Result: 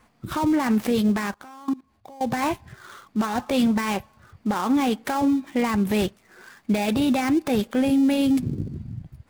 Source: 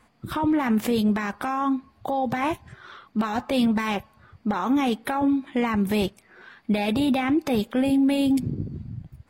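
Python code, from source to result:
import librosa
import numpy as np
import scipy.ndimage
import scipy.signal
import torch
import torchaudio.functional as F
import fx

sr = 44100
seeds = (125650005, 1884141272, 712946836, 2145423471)

y = fx.dead_time(x, sr, dead_ms=0.08)
y = fx.level_steps(y, sr, step_db=22, at=(1.34, 2.21))
y = F.gain(torch.from_numpy(y), 1.0).numpy()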